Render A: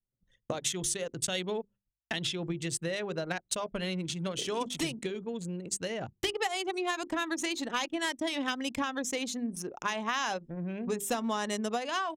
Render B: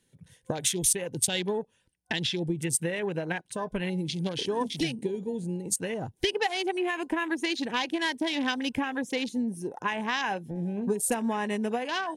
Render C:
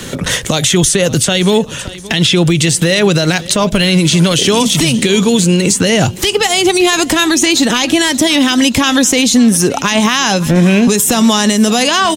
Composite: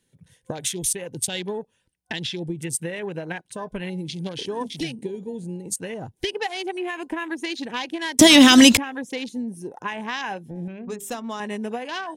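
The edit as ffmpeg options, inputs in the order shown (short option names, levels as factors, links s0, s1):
-filter_complex "[1:a]asplit=3[s0][s1][s2];[s0]atrim=end=8.192[s3];[2:a]atrim=start=8.188:end=8.772[s4];[s1]atrim=start=8.768:end=10.682[s5];[0:a]atrim=start=10.678:end=11.402[s6];[s2]atrim=start=11.398[s7];[s3][s4]acrossfade=d=0.004:c1=hsin:c2=hsin[s8];[s8][s5]acrossfade=d=0.004:c1=hsin:c2=hsin[s9];[s9][s6]acrossfade=d=0.004:c1=hsin:c2=hsin[s10];[s10][s7]acrossfade=d=0.004:c1=hsin:c2=hsin"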